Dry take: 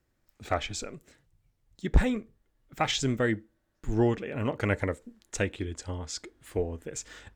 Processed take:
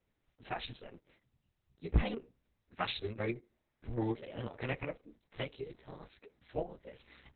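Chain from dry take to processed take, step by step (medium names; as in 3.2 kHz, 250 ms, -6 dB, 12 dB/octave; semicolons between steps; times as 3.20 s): short-time spectra conjugated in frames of 35 ms; formant shift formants +3 st; trim -4.5 dB; Opus 6 kbps 48 kHz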